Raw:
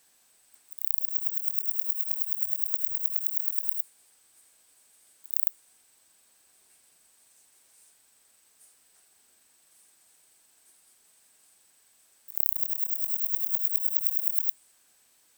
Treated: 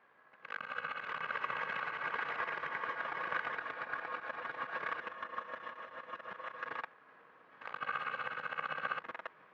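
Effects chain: FFT order left unsorted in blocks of 256 samples; compressor 6:1, threshold -33 dBFS, peak gain reduction 15 dB; granular stretch 0.62×, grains 32 ms; echoes that change speed 0.396 s, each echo -5 st, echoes 3; speaker cabinet 130–2200 Hz, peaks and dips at 150 Hz +5 dB, 490 Hz +8 dB, 1100 Hz +9 dB, 1600 Hz +7 dB; gain +3.5 dB

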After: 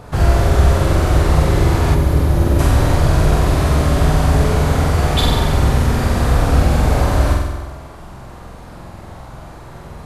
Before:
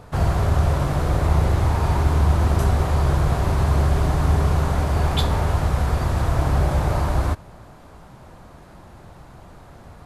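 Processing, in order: flutter echo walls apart 8 m, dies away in 1.1 s; spectral gain 1.95–2.6, 640–10000 Hz -6 dB; dynamic EQ 940 Hz, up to -5 dB, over -36 dBFS, Q 1.2; gain +5.5 dB

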